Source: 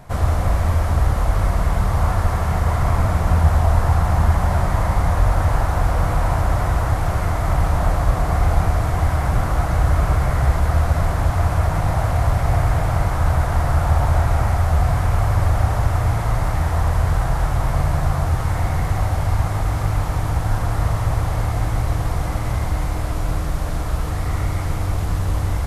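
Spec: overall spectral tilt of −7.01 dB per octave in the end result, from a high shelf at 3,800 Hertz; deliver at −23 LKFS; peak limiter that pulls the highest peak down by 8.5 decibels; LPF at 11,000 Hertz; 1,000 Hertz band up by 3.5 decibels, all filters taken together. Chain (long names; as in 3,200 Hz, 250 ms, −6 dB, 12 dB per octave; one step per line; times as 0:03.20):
low-pass filter 11,000 Hz
parametric band 1,000 Hz +5 dB
high-shelf EQ 3,800 Hz −6.5 dB
level −1 dB
brickwall limiter −12.5 dBFS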